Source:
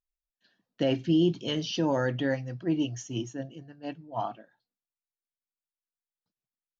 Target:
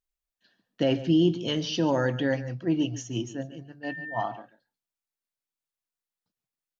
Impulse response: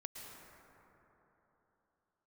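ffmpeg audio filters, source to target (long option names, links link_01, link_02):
-filter_complex "[0:a]asettb=1/sr,asplit=3[link_01][link_02][link_03];[link_01]atrim=end=3.834[link_04];[link_02]atrim=start=3.83:end=4.23,asetpts=PTS-STARTPTS,afade=type=in:duration=0.004:curve=qsin,afade=type=out:start_time=0.396:duration=0.004:curve=qsin,aeval=exprs='val(0)+0.0126*sin(2*PI*1800*n/s)':channel_layout=same[link_05];[link_03]atrim=start=4.226[link_06];[link_04][link_05]acrossfade=duration=0.004:curve1=hsin:curve2=qsin[link_07];[link_07][link_06]acrossfade=duration=0.004:curve1=qsin:curve2=hsin,asplit=2[link_08][link_09];[link_09]adelay=139.9,volume=-15dB,highshelf=frequency=4000:gain=-3.15[link_10];[link_08][link_10]amix=inputs=2:normalize=0,volume=2dB"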